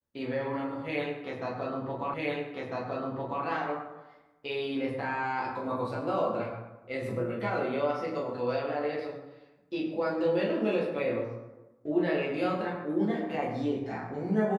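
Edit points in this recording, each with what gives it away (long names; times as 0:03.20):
0:02.14: the same again, the last 1.3 s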